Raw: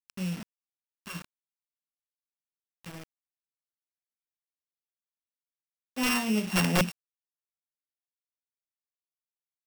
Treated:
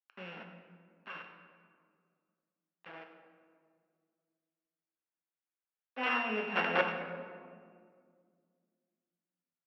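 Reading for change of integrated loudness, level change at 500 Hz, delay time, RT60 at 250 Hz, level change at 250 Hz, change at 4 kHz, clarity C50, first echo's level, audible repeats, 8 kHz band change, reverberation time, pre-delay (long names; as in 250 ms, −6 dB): −6.5 dB, −0.5 dB, 94 ms, 2.8 s, −13.0 dB, −7.5 dB, 5.5 dB, −13.5 dB, 1, below −30 dB, 2.1 s, 8 ms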